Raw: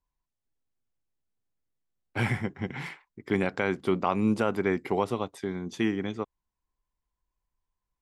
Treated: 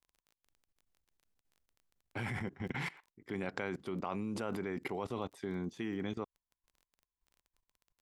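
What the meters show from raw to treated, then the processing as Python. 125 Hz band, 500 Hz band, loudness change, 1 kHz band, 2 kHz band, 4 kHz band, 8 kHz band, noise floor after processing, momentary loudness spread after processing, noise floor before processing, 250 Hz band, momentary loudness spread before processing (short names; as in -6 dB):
-9.5 dB, -11.0 dB, -10.5 dB, -11.0 dB, -9.0 dB, -8.0 dB, -7.0 dB, under -85 dBFS, 5 LU, under -85 dBFS, -10.5 dB, 12 LU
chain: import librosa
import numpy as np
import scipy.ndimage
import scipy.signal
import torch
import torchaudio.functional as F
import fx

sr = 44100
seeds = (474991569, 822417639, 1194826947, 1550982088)

y = fx.dmg_crackle(x, sr, seeds[0], per_s=17.0, level_db=-44.0)
y = fx.level_steps(y, sr, step_db=20)
y = y * librosa.db_to_amplitude(2.5)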